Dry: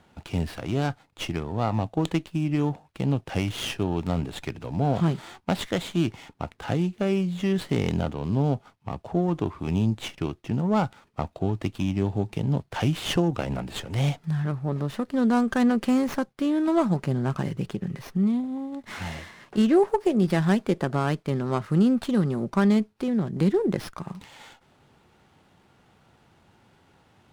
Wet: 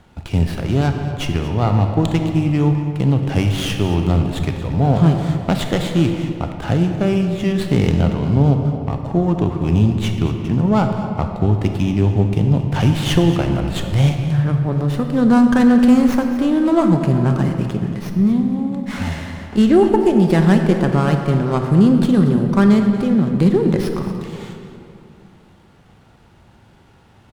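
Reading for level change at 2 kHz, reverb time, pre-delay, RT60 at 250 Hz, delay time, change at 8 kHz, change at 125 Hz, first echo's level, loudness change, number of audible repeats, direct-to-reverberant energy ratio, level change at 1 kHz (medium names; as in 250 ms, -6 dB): +7.0 dB, 2.6 s, 27 ms, 3.0 s, 230 ms, +6.0 dB, +11.0 dB, -14.5 dB, +9.5 dB, 1, 4.5 dB, +7.0 dB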